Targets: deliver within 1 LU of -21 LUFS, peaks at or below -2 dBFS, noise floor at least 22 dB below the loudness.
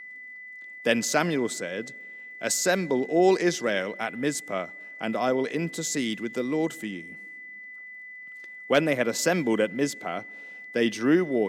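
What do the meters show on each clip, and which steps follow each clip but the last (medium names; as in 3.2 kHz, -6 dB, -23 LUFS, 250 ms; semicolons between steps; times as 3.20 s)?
tick rate 23 per s; steady tone 2 kHz; tone level -40 dBFS; loudness -26.5 LUFS; peak level -8.5 dBFS; loudness target -21.0 LUFS
-> de-click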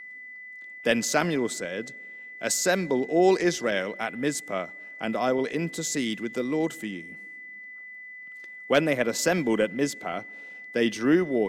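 tick rate 0.087 per s; steady tone 2 kHz; tone level -40 dBFS
-> band-stop 2 kHz, Q 30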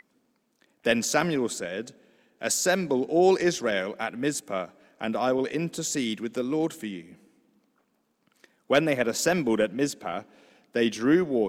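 steady tone not found; loudness -26.5 LUFS; peak level -9.0 dBFS; loudness target -21.0 LUFS
-> trim +5.5 dB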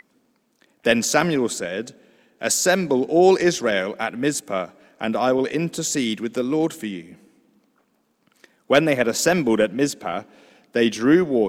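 loudness -21.0 LUFS; peak level -3.5 dBFS; noise floor -66 dBFS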